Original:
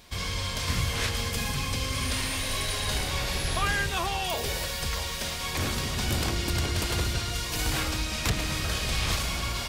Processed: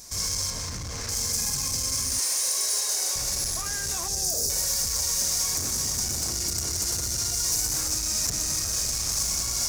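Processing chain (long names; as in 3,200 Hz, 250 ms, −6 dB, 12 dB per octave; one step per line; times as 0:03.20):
0:00.50–0:01.09: high-frequency loss of the air 220 metres
0:04.08–0:04.50: inverse Chebyshev band-stop filter 1,000–2,900 Hz, stop band 40 dB
delay with a high-pass on its return 123 ms, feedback 70%, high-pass 2,600 Hz, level −10.5 dB
brickwall limiter −23.5 dBFS, peak gain reduction 8.5 dB
0:02.19–0:03.16: Butterworth high-pass 340 Hz 48 dB per octave
gain into a clipping stage and back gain 32.5 dB
high shelf with overshoot 4,400 Hz +11.5 dB, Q 3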